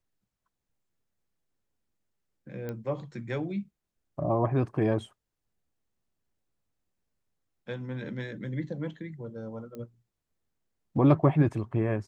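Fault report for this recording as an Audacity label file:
2.690000	2.690000	click −23 dBFS
9.750000	9.750000	click −29 dBFS

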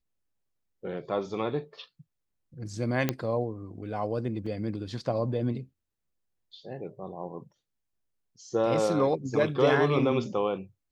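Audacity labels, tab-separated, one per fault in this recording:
3.090000	3.090000	click −11 dBFS
4.460000	4.460000	drop-out 4.7 ms

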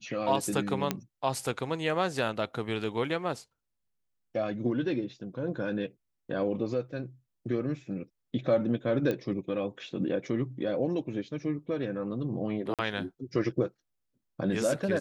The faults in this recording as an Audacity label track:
0.910000	0.910000	click −12 dBFS
9.110000	9.110000	click −19 dBFS
12.740000	12.790000	drop-out 47 ms

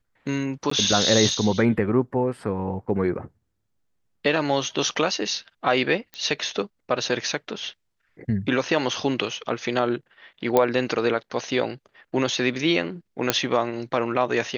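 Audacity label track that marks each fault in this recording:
0.700000	0.710000	drop-out 14 ms
6.140000	6.140000	click −20 dBFS
10.570000	10.570000	click −6 dBFS
13.300000	13.300000	click −2 dBFS

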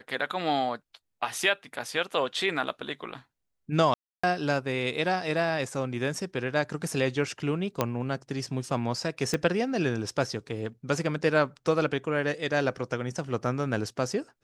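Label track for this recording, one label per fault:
3.940000	4.240000	drop-out 295 ms
7.810000	7.810000	click −10 dBFS
9.340000	9.340000	click −14 dBFS

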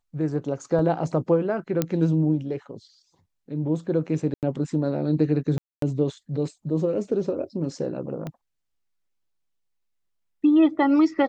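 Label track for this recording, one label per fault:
0.790000	0.790000	drop-out 2.2 ms
1.820000	1.820000	click −9 dBFS
4.340000	4.430000	drop-out 88 ms
5.580000	5.820000	drop-out 243 ms
8.270000	8.270000	click −20 dBFS

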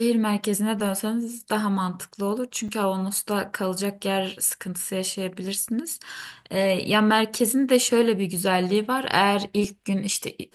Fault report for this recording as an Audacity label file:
2.680000	2.690000	drop-out 5.5 ms

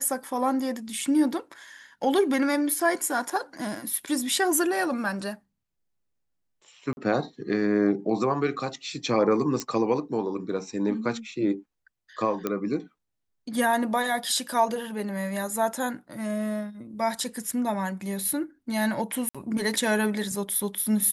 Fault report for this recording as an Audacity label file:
3.300000	3.300000	drop-out 4.1 ms
6.930000	6.970000	drop-out 41 ms
9.600000	9.600000	click −14 dBFS
12.470000	12.470000	click −13 dBFS
19.290000	19.350000	drop-out 56 ms

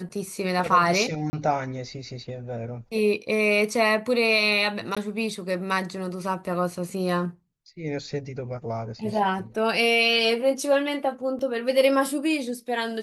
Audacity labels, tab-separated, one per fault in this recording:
1.300000	1.330000	drop-out 30 ms
4.950000	4.970000	drop-out 16 ms
11.390000	11.390000	drop-out 2.7 ms

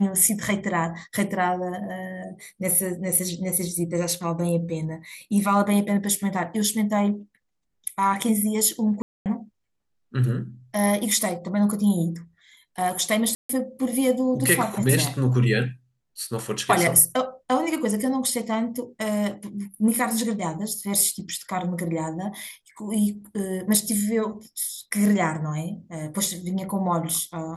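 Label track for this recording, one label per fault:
9.020000	9.260000	drop-out 238 ms
13.350000	13.490000	drop-out 144 ms

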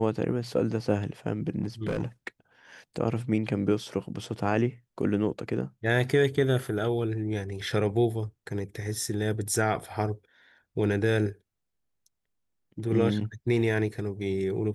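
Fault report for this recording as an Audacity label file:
1.620000	2.280000	clipping −24 dBFS

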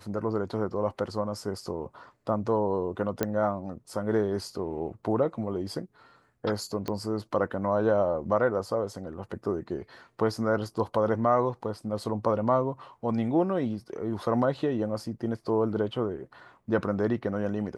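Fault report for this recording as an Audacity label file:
3.230000	3.230000	click −12 dBFS
6.880000	6.880000	click −18 dBFS

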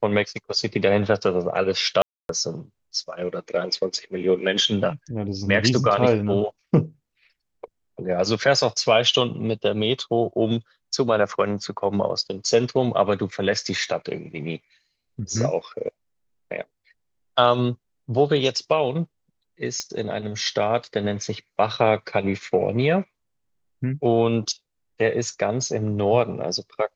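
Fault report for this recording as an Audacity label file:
2.020000	2.290000	drop-out 272 ms
19.800000	19.800000	click −12 dBFS

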